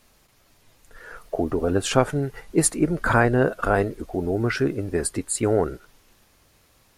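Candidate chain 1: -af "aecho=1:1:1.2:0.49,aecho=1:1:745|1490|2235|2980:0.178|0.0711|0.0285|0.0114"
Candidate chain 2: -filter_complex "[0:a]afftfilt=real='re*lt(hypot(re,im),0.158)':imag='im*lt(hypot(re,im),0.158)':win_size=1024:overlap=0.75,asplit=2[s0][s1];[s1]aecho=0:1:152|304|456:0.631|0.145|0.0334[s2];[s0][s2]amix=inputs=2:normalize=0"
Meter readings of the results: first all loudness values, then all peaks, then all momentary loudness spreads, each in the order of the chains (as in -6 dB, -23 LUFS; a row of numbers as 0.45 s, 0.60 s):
-23.0 LUFS, -32.5 LUFS; -3.5 dBFS, -14.5 dBFS; 18 LU, 12 LU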